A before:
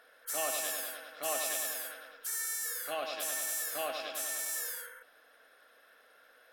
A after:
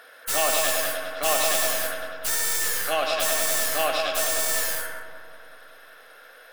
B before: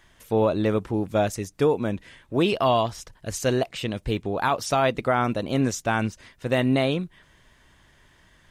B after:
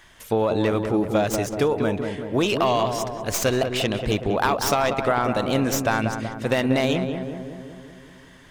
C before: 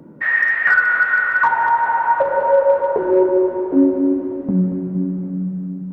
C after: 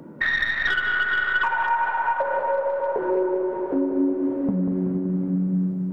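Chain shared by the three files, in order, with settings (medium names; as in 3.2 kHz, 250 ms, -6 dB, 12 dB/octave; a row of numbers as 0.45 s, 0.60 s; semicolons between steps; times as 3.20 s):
tracing distortion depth 0.064 ms; bass shelf 440 Hz -5.5 dB; compression 6:1, threshold -25 dBFS; on a send: filtered feedback delay 189 ms, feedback 65%, low-pass 1.5 kHz, level -6 dB; on the sum: normalise loudness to -23 LUFS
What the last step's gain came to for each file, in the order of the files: +13.0 dB, +7.5 dB, +4.0 dB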